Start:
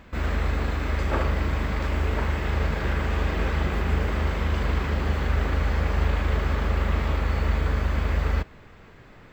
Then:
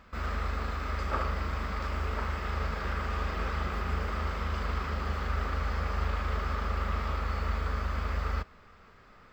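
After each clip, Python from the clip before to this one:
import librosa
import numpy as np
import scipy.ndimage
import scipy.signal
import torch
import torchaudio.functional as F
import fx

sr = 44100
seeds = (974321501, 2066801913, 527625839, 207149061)

y = fx.graphic_eq_31(x, sr, hz=(125, 315, 1250, 5000), db=(-12, -7, 10, 7))
y = F.gain(torch.from_numpy(y), -7.5).numpy()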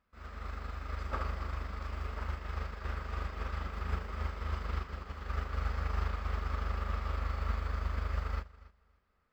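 y = fx.echo_feedback(x, sr, ms=281, feedback_pct=32, wet_db=-7.5)
y = fx.upward_expand(y, sr, threshold_db=-38.0, expansion=2.5)
y = F.gain(torch.from_numpy(y), -3.0).numpy()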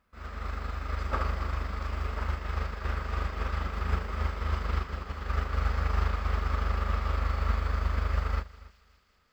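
y = fx.echo_wet_highpass(x, sr, ms=191, feedback_pct=75, hz=3500.0, wet_db=-16)
y = F.gain(torch.from_numpy(y), 6.0).numpy()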